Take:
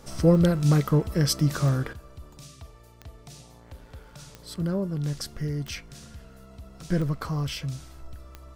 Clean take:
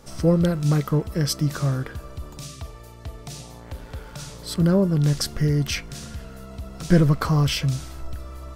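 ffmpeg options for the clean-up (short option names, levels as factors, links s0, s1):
-af "adeclick=t=4,asetnsamples=n=441:p=0,asendcmd='1.93 volume volume 9dB',volume=1"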